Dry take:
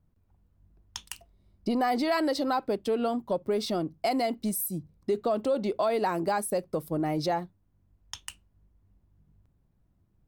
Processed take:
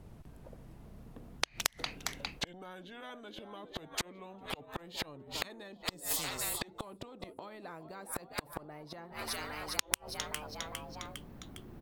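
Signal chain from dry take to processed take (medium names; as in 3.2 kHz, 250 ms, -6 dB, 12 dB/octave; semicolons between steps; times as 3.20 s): gliding tape speed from 64% -> 110%; peaking EQ 8.1 kHz -8 dB 1.7 oct; frequency-shifting echo 406 ms, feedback 56%, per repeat +76 Hz, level -17.5 dB; inverted gate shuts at -24 dBFS, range -38 dB; spectrum-flattening compressor 10:1; trim +14 dB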